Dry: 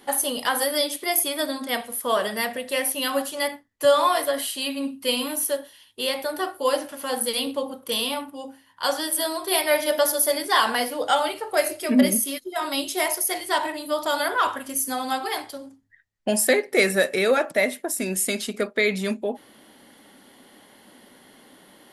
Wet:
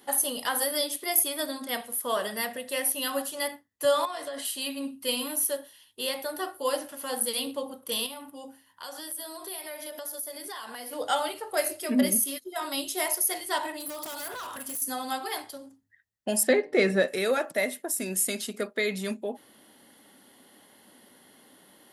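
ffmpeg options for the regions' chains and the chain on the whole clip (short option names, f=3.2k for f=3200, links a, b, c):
-filter_complex "[0:a]asettb=1/sr,asplit=3[a][b][c];[a]atrim=end=4.054[d];[b]atrim=start=4.05:end=4.45,asetpts=PTS-STARTPTS,afade=t=in:d=0.004:c=qsin,afade=t=out:st=0.396:d=0.004:c=qsin,acompressor=threshold=-25dB:ratio=10:attack=3.2:release=140:knee=1:detection=peak,lowpass=f=8.5k:w=0.5412,lowpass=f=8.5k:w=1.3066[e];[c]atrim=start=4.446[f];[d][e]acrossfade=d=0.004:c1=hsin:c2=qsin[g];[g][f]acrossfade=d=0.004:c1=qsin:c2=hsin,asettb=1/sr,asplit=3[h][i][j];[h]atrim=end=8.064[k];[i]atrim=start=8.06:end=10.93,asetpts=PTS-STARTPTS,afade=t=in:d=0.004:c=qsin,afade=t=out:st=2.866:d=0.004:c=qsin,highshelf=f=11k:g=4,acompressor=threshold=-32dB:ratio=5:attack=3.2:release=140:knee=1:detection=peak[l];[j]atrim=start=10.926[m];[k][l]acrossfade=d=0.004:c1=hsin:c2=qsin[n];[n][m]acrossfade=d=0.004:c1=qsin:c2=hsin,asettb=1/sr,asplit=3[o][p][q];[o]atrim=end=13.804[r];[p]atrim=start=13.8:end=14.82,asetpts=PTS-STARTPTS,afade=t=in:d=0.004:c=qsin,afade=t=out:st=1.016:d=0.004:c=qsin,highshelf=f=6.9k:g=10.5,acompressor=threshold=-26dB:ratio=8:attack=3.2:release=140:knee=1:detection=peak,aeval=exprs='0.0447*(abs(mod(val(0)/0.0447+3,4)-2)-1)':c=same[s];[q]atrim=start=14.816[t];[r][s]acrossfade=d=0.004:c1=hsin:c2=qsin[u];[u][t]acrossfade=d=0.004:c1=qsin:c2=hsin,asettb=1/sr,asplit=3[v][w][x];[v]atrim=end=16.434[y];[w]atrim=start=16.43:end=17.08,asetpts=PTS-STARTPTS,afade=t=in:d=0.004:c=qsin,afade=t=out:st=0.646:d=0.004:c=qsin,lowpass=4.2k,lowshelf=f=460:g=8,bandreject=f=150.8:t=h:w=4,bandreject=f=301.6:t=h:w=4,bandreject=f=452.4:t=h:w=4,bandreject=f=603.2:t=h:w=4,bandreject=f=754:t=h:w=4,bandreject=f=904.8:t=h:w=4,bandreject=f=1.0556k:t=h:w=4[z];[x]atrim=start=17.076[aa];[y][z]acrossfade=d=0.004:c1=hsin:c2=qsin[ab];[ab][aa]acrossfade=d=0.004:c1=qsin:c2=hsin,highpass=57,highshelf=f=8.7k:g=8,bandreject=f=2.3k:w=20,volume=-6dB"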